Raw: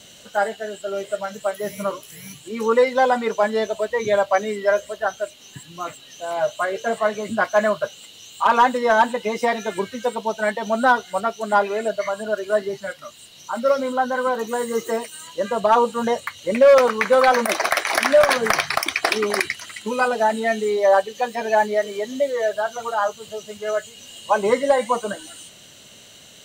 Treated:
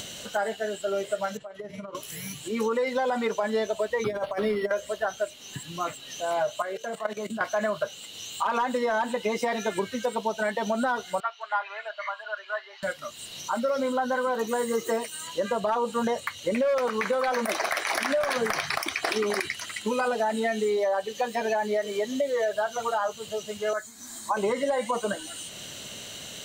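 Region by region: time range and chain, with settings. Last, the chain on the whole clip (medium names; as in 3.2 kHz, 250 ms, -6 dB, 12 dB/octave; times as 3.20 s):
1.37–1.95 s: compression 16:1, threshold -34 dBFS + AM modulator 21 Hz, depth 30% + tape spacing loss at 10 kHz 22 dB
4.04–4.71 s: compressor with a negative ratio -23 dBFS, ratio -0.5 + hum notches 50/100/150/200/250/300/350 Hz + decimation joined by straight lines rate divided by 6×
6.62–7.41 s: level held to a coarse grid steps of 16 dB + high-pass 130 Hz 24 dB/octave + treble shelf 11 kHz +4 dB
11.20–12.83 s: high-pass 940 Hz 24 dB/octave + distance through air 280 m
23.73–24.37 s: resonant low shelf 200 Hz -6.5 dB, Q 3 + static phaser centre 1.2 kHz, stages 4
whole clip: upward compressor, threshold -32 dBFS; peak limiter -14 dBFS; compression 4:1, threshold -23 dBFS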